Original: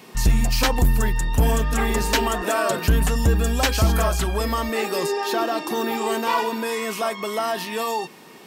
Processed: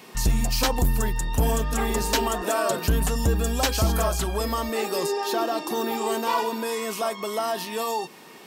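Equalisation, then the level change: low shelf 320 Hz -4.5 dB; dynamic EQ 2000 Hz, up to -6 dB, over -39 dBFS, Q 0.95; 0.0 dB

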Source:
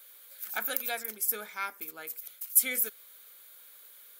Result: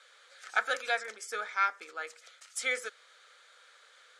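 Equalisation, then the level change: air absorption 110 m; speaker cabinet 470–8000 Hz, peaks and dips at 500 Hz +8 dB, 740 Hz +4 dB, 1300 Hz +9 dB, 1800 Hz +7 dB; high shelf 4700 Hz +11.5 dB; 0.0 dB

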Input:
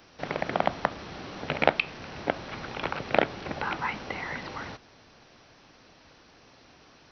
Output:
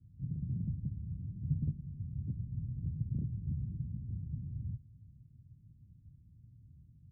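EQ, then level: HPF 94 Hz 12 dB/oct; inverse Chebyshev low-pass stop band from 770 Hz, stop band 80 dB; tilt -2 dB/oct; +7.0 dB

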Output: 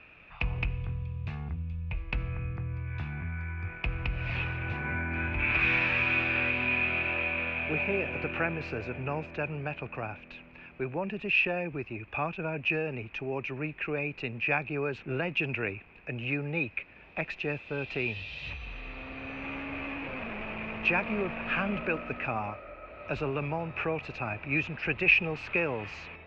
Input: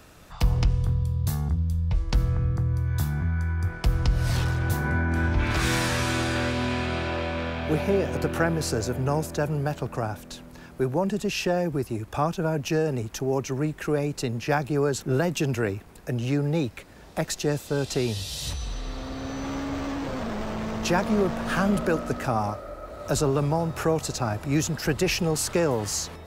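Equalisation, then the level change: synth low-pass 2500 Hz, resonance Q 13; air absorption 150 m; low shelf 320 Hz -3.5 dB; -7.0 dB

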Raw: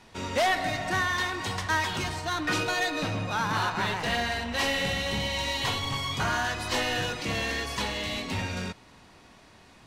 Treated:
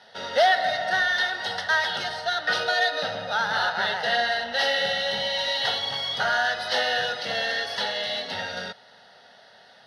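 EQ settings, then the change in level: BPF 340–7300 Hz; fixed phaser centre 1600 Hz, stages 8; +7.0 dB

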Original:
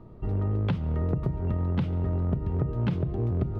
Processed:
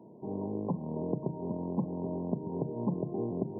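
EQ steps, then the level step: HPF 180 Hz 24 dB/oct; brick-wall FIR low-pass 1100 Hz; 0.0 dB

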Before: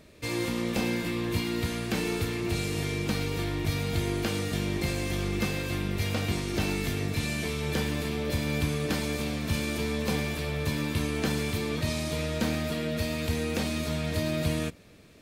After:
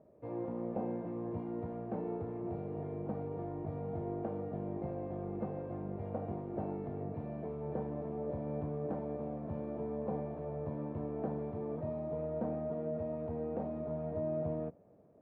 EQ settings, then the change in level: HPF 210 Hz 12 dB/oct; Chebyshev low-pass 710 Hz, order 3; bell 290 Hz -10 dB 1.9 oct; +2.5 dB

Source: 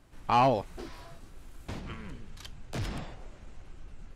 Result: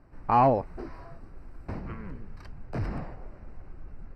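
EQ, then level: running mean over 13 samples; +3.5 dB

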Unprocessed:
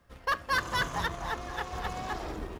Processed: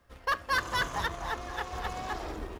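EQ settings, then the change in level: bell 160 Hz -5 dB 0.97 oct; 0.0 dB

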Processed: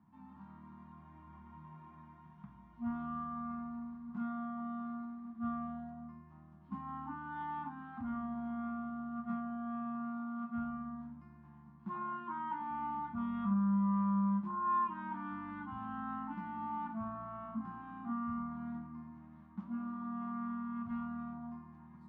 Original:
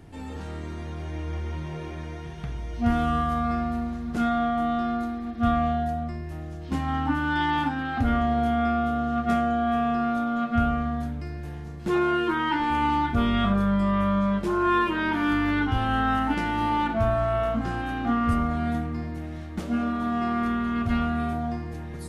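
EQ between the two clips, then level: double band-pass 460 Hz, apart 2.3 oct; air absorption 69 m; -5.5 dB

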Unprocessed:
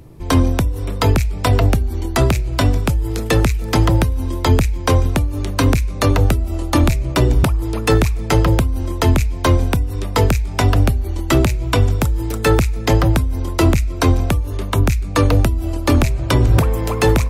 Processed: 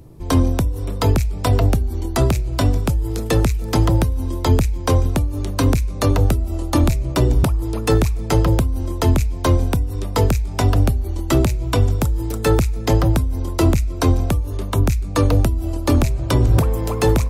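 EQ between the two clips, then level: bell 2100 Hz -5.5 dB 1.6 oct; -1.5 dB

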